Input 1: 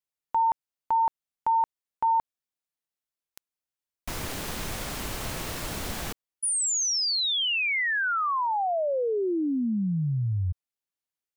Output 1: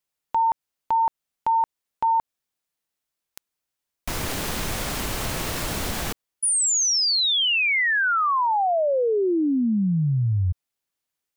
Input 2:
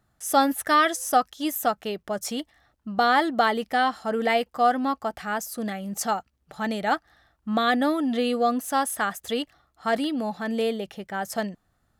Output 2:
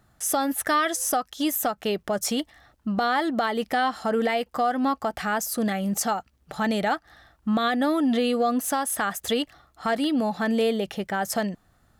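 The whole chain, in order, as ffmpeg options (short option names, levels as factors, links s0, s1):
-af "acompressor=threshold=0.0562:ratio=6:attack=0.33:release=379:knee=6:detection=peak,volume=2.37"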